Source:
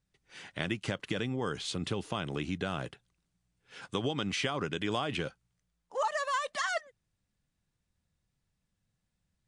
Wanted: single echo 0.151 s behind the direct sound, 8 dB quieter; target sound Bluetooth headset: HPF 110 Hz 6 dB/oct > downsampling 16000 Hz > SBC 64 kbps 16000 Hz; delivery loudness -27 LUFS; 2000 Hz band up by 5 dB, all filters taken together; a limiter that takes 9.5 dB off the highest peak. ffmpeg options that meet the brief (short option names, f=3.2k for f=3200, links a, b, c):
-af "equalizer=f=2k:t=o:g=6.5,alimiter=limit=-21.5dB:level=0:latency=1,highpass=f=110:p=1,aecho=1:1:151:0.398,aresample=16000,aresample=44100,volume=7dB" -ar 16000 -c:a sbc -b:a 64k